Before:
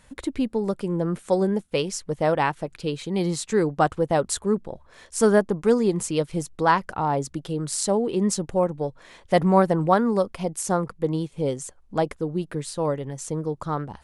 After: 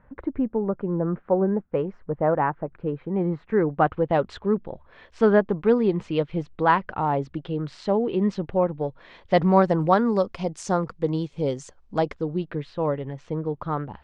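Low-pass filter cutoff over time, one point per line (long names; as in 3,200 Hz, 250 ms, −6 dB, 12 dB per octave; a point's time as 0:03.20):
low-pass filter 24 dB per octave
0:03.30 1,600 Hz
0:04.14 3,300 Hz
0:08.77 3,300 Hz
0:09.72 6,100 Hz
0:11.98 6,100 Hz
0:12.65 3,200 Hz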